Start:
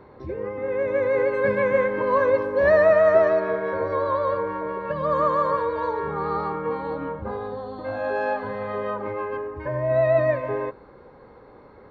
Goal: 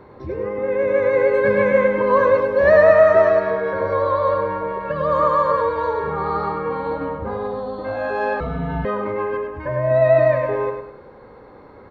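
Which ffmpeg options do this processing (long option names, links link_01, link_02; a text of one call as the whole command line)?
ffmpeg -i in.wav -filter_complex "[0:a]aecho=1:1:102|204|306|408:0.473|0.17|0.0613|0.0221,asettb=1/sr,asplit=3[link_01][link_02][link_03];[link_01]atrim=end=8.404[link_04];[link_02]atrim=start=8.4:end=8.85,asetpts=PTS-STARTPTS,afade=type=in:duration=0.004:curve=qsin,afade=type=out:start_time=0.446:duration=0.004:curve=qsin,afreqshift=-350[link_05];[link_03]atrim=start=8.846[link_06];[link_04][link_05]acrossfade=duration=0.004:curve1=hsin:curve2=qsin[link_07];[link_07][link_06]acrossfade=duration=0.004:curve1=qsin:curve2=hsin,volume=3.5dB" out.wav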